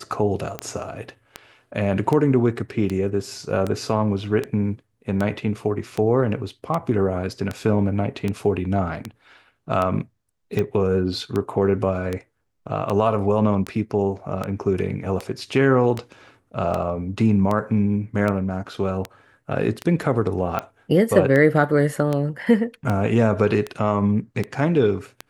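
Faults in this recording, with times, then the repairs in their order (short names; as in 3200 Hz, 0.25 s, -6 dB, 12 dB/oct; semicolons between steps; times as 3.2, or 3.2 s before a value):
tick 78 rpm -12 dBFS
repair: de-click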